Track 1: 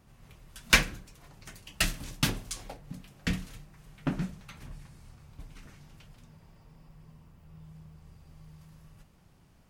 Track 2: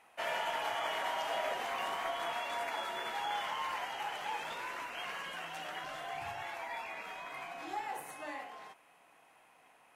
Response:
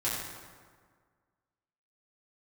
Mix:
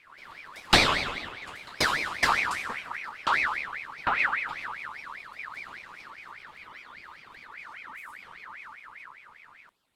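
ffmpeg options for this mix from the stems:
-filter_complex "[0:a]aemphasis=mode=reproduction:type=50fm,bandreject=f=4800:w=5.7,volume=1.19,asplit=2[s0][s1];[s1]volume=0.708[s2];[1:a]lowpass=f=3400:p=1,alimiter=level_in=3.55:limit=0.0631:level=0:latency=1:release=333,volume=0.282,crystalizer=i=4.5:c=0,volume=0.251[s3];[2:a]atrim=start_sample=2205[s4];[s2][s4]afir=irnorm=-1:irlink=0[s5];[s0][s3][s5]amix=inputs=3:normalize=0,aeval=exprs='val(0)*sin(2*PI*1700*n/s+1700*0.4/5*sin(2*PI*5*n/s))':c=same"

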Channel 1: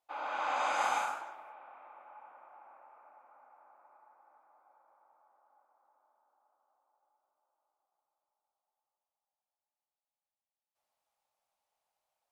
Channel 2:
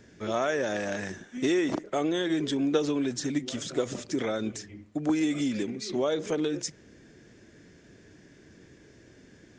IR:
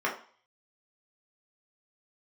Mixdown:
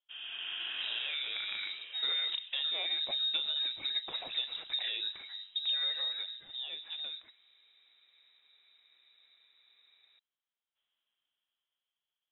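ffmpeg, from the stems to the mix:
-filter_complex "[0:a]volume=0.531[s0];[1:a]equalizer=f=610:w=4.9:g=-9.5,adelay=600,volume=0.398,afade=t=out:st=5.91:d=0.49:silence=0.237137,asplit=2[s1][s2];[s2]volume=0.0841[s3];[2:a]atrim=start_sample=2205[s4];[s3][s4]afir=irnorm=-1:irlink=0[s5];[s0][s1][s5]amix=inputs=3:normalize=0,dynaudnorm=f=150:g=17:m=2.66,lowpass=f=3400:t=q:w=0.5098,lowpass=f=3400:t=q:w=0.6013,lowpass=f=3400:t=q:w=0.9,lowpass=f=3400:t=q:w=2.563,afreqshift=-4000,acompressor=threshold=0.0141:ratio=2"

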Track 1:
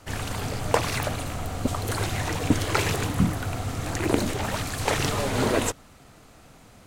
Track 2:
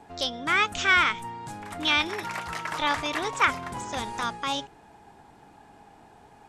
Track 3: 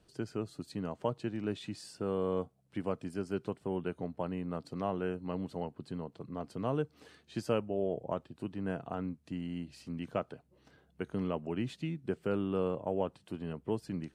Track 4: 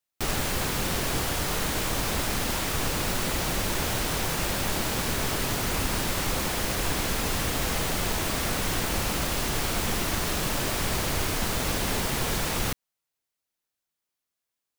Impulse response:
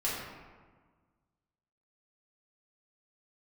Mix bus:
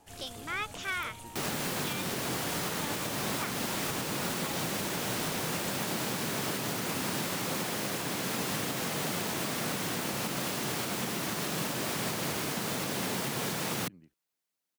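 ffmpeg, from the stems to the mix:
-filter_complex "[0:a]alimiter=limit=0.251:level=0:latency=1:release=192,aexciter=amount=1.9:drive=6.9:freq=2600,volume=0.1[s0];[1:a]volume=0.251[s1];[2:a]volume=0.158[s2];[3:a]highpass=f=140:w=0.5412,highpass=f=140:w=1.3066,lowshelf=f=230:g=5.5,adelay=1150,volume=0.891[s3];[s0][s1][s2][s3]amix=inputs=4:normalize=0,alimiter=limit=0.075:level=0:latency=1:release=350"

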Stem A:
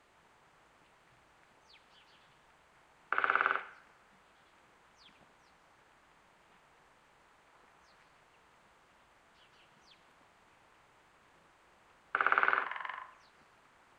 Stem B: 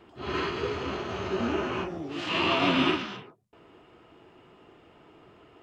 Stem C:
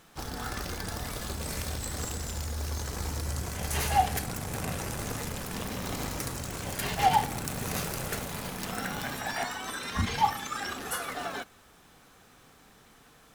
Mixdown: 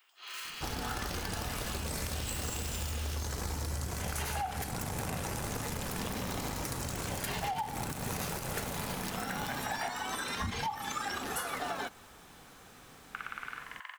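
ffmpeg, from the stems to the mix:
-filter_complex "[0:a]equalizer=f=270:w=0.39:g=-14.5,adelay=1000,volume=0.75[s0];[1:a]highpass=1500,volume=59.6,asoftclip=hard,volume=0.0168,volume=0.447[s1];[2:a]adynamicequalizer=threshold=0.00501:dfrequency=880:dqfactor=4.2:tfrequency=880:tqfactor=4.2:attack=5:release=100:ratio=0.375:range=2.5:mode=boostabove:tftype=bell,alimiter=limit=0.0944:level=0:latency=1:release=193,adelay=450,volume=1.33[s2];[s0][s1]amix=inputs=2:normalize=0,aemphasis=mode=production:type=riaa,acompressor=threshold=0.0158:ratio=6,volume=1[s3];[s2][s3]amix=inputs=2:normalize=0,acompressor=threshold=0.0224:ratio=4"

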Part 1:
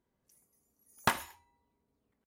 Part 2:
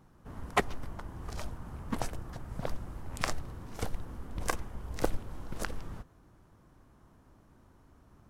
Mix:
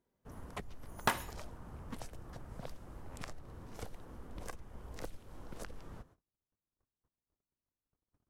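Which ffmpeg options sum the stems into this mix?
-filter_complex "[0:a]acontrast=57,volume=0.355[s0];[1:a]agate=range=0.0178:threshold=0.002:ratio=16:detection=peak,acrossover=split=200|2200[s1][s2][s3];[s1]acompressor=threshold=0.0126:ratio=4[s4];[s2]acompressor=threshold=0.00708:ratio=4[s5];[s3]acompressor=threshold=0.00447:ratio=4[s6];[s4][s5][s6]amix=inputs=3:normalize=0,volume=0.531[s7];[s0][s7]amix=inputs=2:normalize=0,equalizer=f=500:w=1.5:g=3.5"

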